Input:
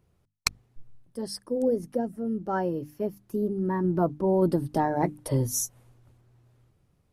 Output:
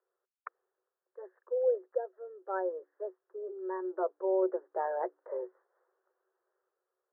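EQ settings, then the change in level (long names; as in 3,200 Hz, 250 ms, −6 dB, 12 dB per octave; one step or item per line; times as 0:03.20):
Butterworth low-pass 1,800 Hz 72 dB per octave
dynamic equaliser 610 Hz, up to +7 dB, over −39 dBFS, Q 1.9
Chebyshev high-pass with heavy ripple 360 Hz, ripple 6 dB
−5.5 dB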